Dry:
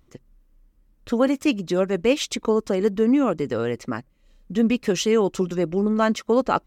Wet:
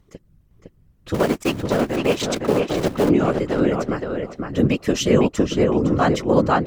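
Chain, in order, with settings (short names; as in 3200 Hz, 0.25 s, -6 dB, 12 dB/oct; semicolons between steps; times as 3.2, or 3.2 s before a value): 1.14–3.09 cycle switcher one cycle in 3, muted; whisperiser; darkening echo 0.509 s, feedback 21%, low-pass 3000 Hz, level -3 dB; gain +1.5 dB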